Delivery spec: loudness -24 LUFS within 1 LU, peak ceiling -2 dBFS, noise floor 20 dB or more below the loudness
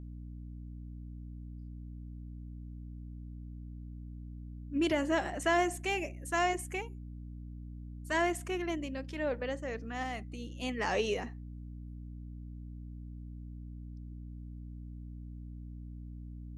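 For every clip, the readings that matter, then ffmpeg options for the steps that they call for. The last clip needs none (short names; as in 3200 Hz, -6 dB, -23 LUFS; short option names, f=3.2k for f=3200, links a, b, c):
hum 60 Hz; harmonics up to 300 Hz; hum level -42 dBFS; loudness -37.5 LUFS; peak -17.0 dBFS; loudness target -24.0 LUFS
-> -af "bandreject=f=60:t=h:w=4,bandreject=f=120:t=h:w=4,bandreject=f=180:t=h:w=4,bandreject=f=240:t=h:w=4,bandreject=f=300:t=h:w=4"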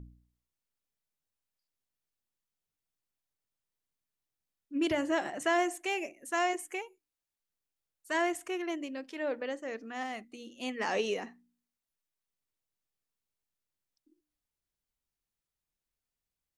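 hum none; loudness -34.0 LUFS; peak -17.0 dBFS; loudness target -24.0 LUFS
-> -af "volume=10dB"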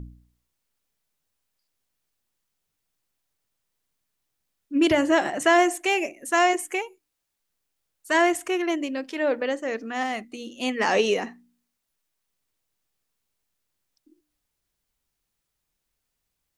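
loudness -24.0 LUFS; peak -7.0 dBFS; noise floor -80 dBFS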